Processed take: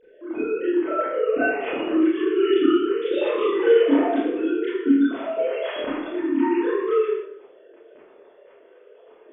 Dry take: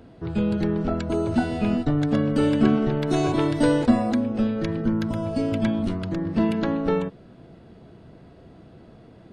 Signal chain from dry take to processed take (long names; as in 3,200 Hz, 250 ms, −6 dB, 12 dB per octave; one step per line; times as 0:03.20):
three sine waves on the formant tracks
four-comb reverb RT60 0.76 s, combs from 25 ms, DRR −10 dB
dynamic equaliser 2,600 Hz, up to +4 dB, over −34 dBFS, Q 1
level −9 dB